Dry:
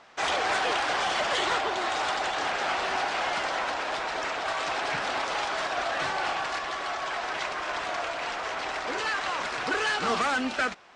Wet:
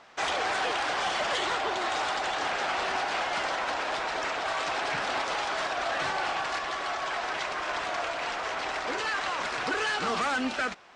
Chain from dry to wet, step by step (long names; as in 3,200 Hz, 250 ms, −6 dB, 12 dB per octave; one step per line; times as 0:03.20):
brickwall limiter −20.5 dBFS, peak gain reduction 4.5 dB